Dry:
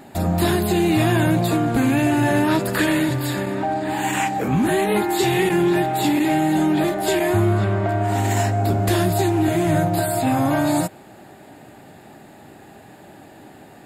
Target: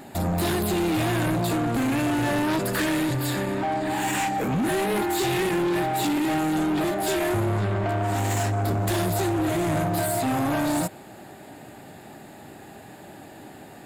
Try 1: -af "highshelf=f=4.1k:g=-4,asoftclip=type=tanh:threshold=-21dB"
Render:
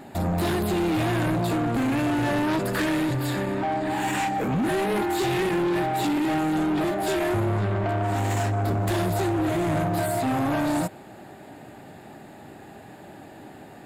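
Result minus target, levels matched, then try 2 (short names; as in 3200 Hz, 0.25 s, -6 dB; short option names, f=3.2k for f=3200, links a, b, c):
8000 Hz band -5.0 dB
-af "highshelf=f=4.1k:g=3,asoftclip=type=tanh:threshold=-21dB"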